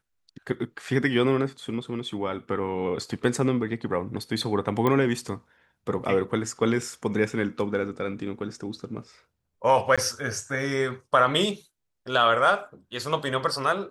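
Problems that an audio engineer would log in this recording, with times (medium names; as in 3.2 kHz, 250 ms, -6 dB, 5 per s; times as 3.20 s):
4.87 s: pop -12 dBFS
9.96–9.98 s: dropout 16 ms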